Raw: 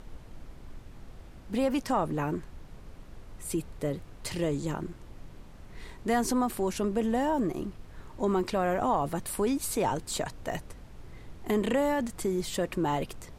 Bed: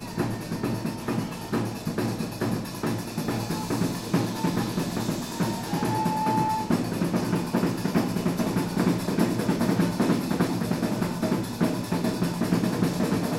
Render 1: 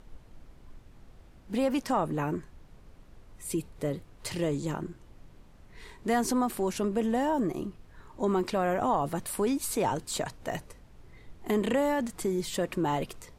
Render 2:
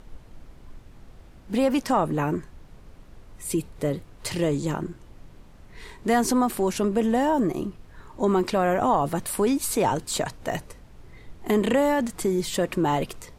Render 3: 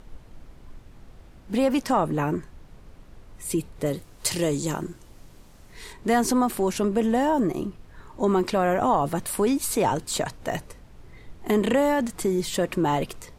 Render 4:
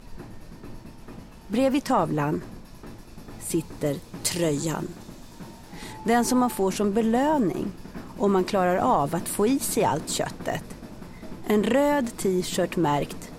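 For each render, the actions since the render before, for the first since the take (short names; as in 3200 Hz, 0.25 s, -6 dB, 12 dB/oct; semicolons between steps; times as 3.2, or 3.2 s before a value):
noise print and reduce 6 dB
gain +5.5 dB
3.86–5.93 tone controls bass -2 dB, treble +9 dB
add bed -15.5 dB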